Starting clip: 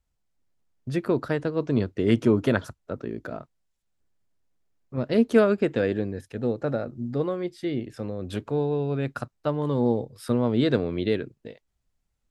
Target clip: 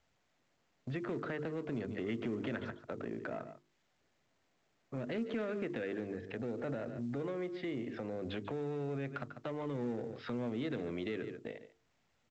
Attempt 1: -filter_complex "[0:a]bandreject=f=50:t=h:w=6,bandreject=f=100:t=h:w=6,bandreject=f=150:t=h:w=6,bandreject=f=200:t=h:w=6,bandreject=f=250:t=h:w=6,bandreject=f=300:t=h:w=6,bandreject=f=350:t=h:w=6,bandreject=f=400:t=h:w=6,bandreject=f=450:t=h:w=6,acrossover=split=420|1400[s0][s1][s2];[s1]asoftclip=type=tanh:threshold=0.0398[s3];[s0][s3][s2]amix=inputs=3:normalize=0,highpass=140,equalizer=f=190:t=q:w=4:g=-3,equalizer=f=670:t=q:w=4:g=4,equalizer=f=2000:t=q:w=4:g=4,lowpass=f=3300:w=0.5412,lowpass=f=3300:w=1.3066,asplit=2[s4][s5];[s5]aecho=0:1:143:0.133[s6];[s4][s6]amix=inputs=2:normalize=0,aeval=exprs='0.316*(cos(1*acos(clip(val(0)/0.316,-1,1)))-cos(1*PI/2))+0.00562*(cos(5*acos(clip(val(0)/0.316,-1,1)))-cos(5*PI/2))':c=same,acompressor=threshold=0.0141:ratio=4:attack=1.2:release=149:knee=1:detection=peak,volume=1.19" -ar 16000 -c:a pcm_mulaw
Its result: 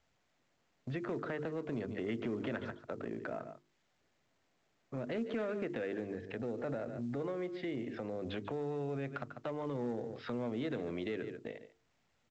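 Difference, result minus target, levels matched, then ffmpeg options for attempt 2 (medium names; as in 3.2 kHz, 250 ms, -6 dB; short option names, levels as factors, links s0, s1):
saturation: distortion -5 dB
-filter_complex "[0:a]bandreject=f=50:t=h:w=6,bandreject=f=100:t=h:w=6,bandreject=f=150:t=h:w=6,bandreject=f=200:t=h:w=6,bandreject=f=250:t=h:w=6,bandreject=f=300:t=h:w=6,bandreject=f=350:t=h:w=6,bandreject=f=400:t=h:w=6,bandreject=f=450:t=h:w=6,acrossover=split=420|1400[s0][s1][s2];[s1]asoftclip=type=tanh:threshold=0.015[s3];[s0][s3][s2]amix=inputs=3:normalize=0,highpass=140,equalizer=f=190:t=q:w=4:g=-3,equalizer=f=670:t=q:w=4:g=4,equalizer=f=2000:t=q:w=4:g=4,lowpass=f=3300:w=0.5412,lowpass=f=3300:w=1.3066,asplit=2[s4][s5];[s5]aecho=0:1:143:0.133[s6];[s4][s6]amix=inputs=2:normalize=0,aeval=exprs='0.316*(cos(1*acos(clip(val(0)/0.316,-1,1)))-cos(1*PI/2))+0.00562*(cos(5*acos(clip(val(0)/0.316,-1,1)))-cos(5*PI/2))':c=same,acompressor=threshold=0.0141:ratio=4:attack=1.2:release=149:knee=1:detection=peak,volume=1.19" -ar 16000 -c:a pcm_mulaw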